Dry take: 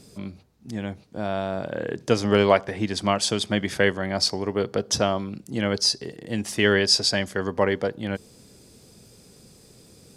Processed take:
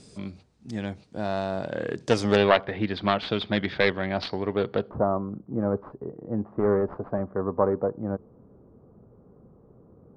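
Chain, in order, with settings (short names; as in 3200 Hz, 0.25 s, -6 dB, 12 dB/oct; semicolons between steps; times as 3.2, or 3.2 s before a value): self-modulated delay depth 0.25 ms; Chebyshev low-pass 9000 Hz, order 4, from 2.35 s 4000 Hz, from 4.89 s 1200 Hz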